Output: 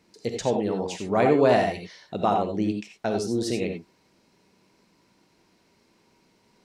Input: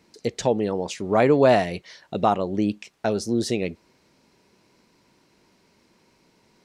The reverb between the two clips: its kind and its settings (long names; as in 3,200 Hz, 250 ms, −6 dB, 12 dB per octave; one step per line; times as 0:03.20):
reverb whose tail is shaped and stops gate 110 ms rising, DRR 4 dB
level −3.5 dB